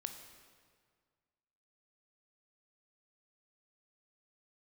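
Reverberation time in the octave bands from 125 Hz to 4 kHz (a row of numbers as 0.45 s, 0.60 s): 2.1 s, 1.9 s, 1.9 s, 1.8 s, 1.6 s, 1.4 s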